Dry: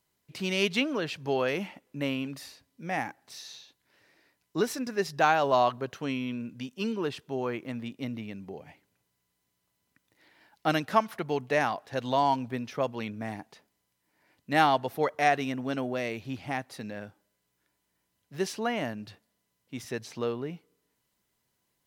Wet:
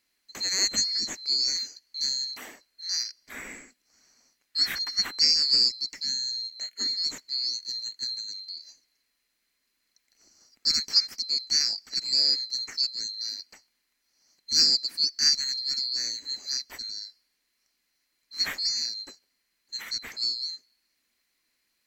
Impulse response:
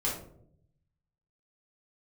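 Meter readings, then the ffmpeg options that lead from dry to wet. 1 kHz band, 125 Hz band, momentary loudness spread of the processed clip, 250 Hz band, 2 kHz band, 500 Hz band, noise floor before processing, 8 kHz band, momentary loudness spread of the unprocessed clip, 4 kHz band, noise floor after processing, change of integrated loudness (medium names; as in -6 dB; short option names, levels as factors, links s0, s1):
under -20 dB, under -15 dB, 17 LU, -18.0 dB, -6.5 dB, under -20 dB, -79 dBFS, +15.5 dB, 18 LU, +16.5 dB, -77 dBFS, +5.0 dB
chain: -af "afftfilt=real='real(if(lt(b,736),b+184*(1-2*mod(floor(b/184),2)),b),0)':imag='imag(if(lt(b,736),b+184*(1-2*mod(floor(b/184),2)),b),0)':win_size=2048:overlap=0.75,equalizer=f=125:t=o:w=1:g=-6,equalizer=f=250:t=o:w=1:g=9,equalizer=f=1000:t=o:w=1:g=-3,equalizer=f=2000:t=o:w=1:g=11"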